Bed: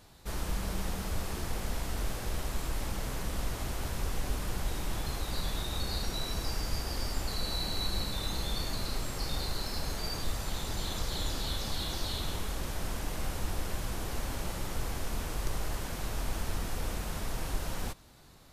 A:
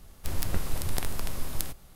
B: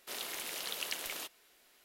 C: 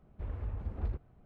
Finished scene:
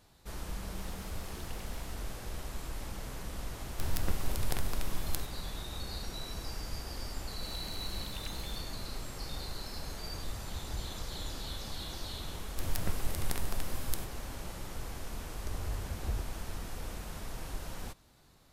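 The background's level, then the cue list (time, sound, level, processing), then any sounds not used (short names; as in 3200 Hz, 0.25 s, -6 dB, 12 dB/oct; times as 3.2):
bed -6 dB
0.68 add B -17 dB
3.54 add A -3.5 dB + bell 10000 Hz -2.5 dB
7.34 add B -11.5 dB
9.9 add C -8 dB
12.33 add A -4.5 dB
15.25 add C -1 dB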